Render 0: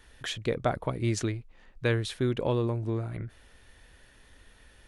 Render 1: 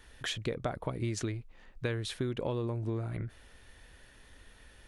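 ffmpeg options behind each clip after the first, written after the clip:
-af "acompressor=threshold=-30dB:ratio=6"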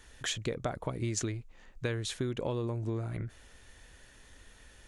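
-af "equalizer=f=6.9k:t=o:w=0.55:g=8.5"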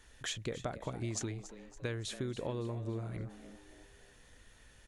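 -filter_complex "[0:a]asplit=5[a][b][c][d][e];[b]adelay=281,afreqshift=95,volume=-14dB[f];[c]adelay=562,afreqshift=190,volume=-20.9dB[g];[d]adelay=843,afreqshift=285,volume=-27.9dB[h];[e]adelay=1124,afreqshift=380,volume=-34.8dB[i];[a][f][g][h][i]amix=inputs=5:normalize=0,volume=-4.5dB"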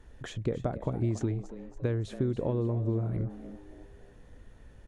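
-af "tiltshelf=f=1.3k:g=10"

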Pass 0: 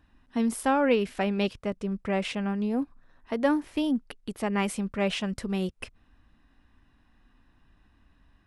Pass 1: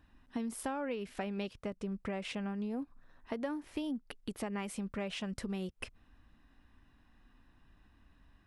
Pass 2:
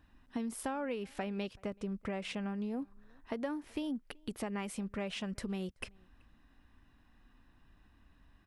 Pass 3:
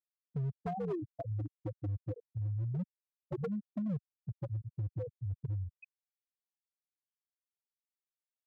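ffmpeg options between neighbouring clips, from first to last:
-af "acompressor=threshold=-33dB:ratio=6,volume=-2dB"
-filter_complex "[0:a]asplit=2[a][b];[b]adelay=379,volume=-28dB,highshelf=f=4k:g=-8.53[c];[a][c]amix=inputs=2:normalize=0"
-af "afftfilt=real='re*gte(hypot(re,im),0.1)':imag='im*gte(hypot(re,im),0.1)':win_size=1024:overlap=0.75,highpass=f=170:t=q:w=0.5412,highpass=f=170:t=q:w=1.307,lowpass=f=2.8k:t=q:w=0.5176,lowpass=f=2.8k:t=q:w=0.7071,lowpass=f=2.8k:t=q:w=1.932,afreqshift=-94,asoftclip=type=hard:threshold=-36.5dB,volume=5dB"

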